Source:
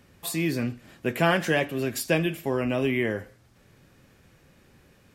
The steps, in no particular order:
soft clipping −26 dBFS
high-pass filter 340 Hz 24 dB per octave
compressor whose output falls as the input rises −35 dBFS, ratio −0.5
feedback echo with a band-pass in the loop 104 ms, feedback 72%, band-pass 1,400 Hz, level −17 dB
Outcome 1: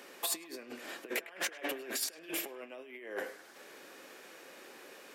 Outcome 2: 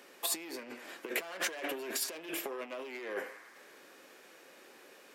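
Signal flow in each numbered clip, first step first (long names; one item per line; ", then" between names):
compressor whose output falls as the input rises, then feedback echo with a band-pass in the loop, then soft clipping, then high-pass filter
soft clipping, then feedback echo with a band-pass in the loop, then compressor whose output falls as the input rises, then high-pass filter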